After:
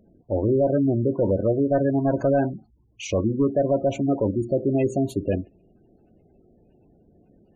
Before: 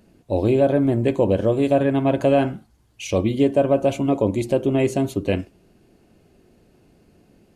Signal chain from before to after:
gain into a clipping stage and back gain 14 dB
gate on every frequency bin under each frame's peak −20 dB strong
level −1.5 dB

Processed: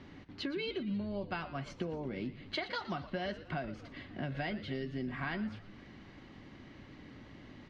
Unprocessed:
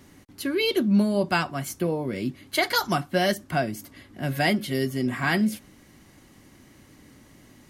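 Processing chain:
low-pass filter 4,100 Hz 24 dB per octave
downward compressor 6 to 1, threshold −36 dBFS, peak gain reduction 18 dB
on a send: echo with shifted repeats 117 ms, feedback 45%, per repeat −110 Hz, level −14 dB
on the sum: feedback echo with a swinging delay time 271 ms, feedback 54%, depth 71 cents, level −24 dB

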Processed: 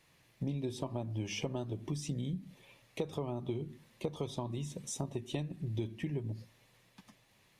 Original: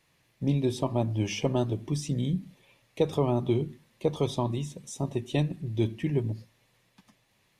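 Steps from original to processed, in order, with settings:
downward compressor 6 to 1, threshold −35 dBFS, peak gain reduction 15 dB
level +1 dB

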